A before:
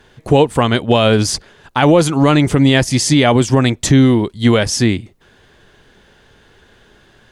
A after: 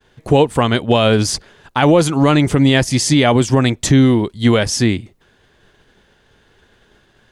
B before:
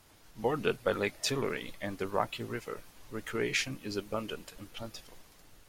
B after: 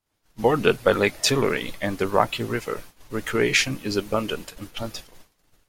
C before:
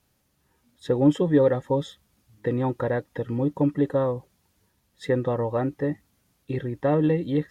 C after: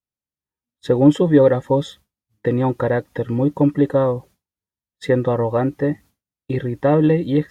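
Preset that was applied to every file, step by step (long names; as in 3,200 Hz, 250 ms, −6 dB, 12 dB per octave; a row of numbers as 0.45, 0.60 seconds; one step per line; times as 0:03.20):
downward expander −44 dBFS
normalise the peak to −2 dBFS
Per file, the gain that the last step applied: −1.0, +11.0, +6.5 decibels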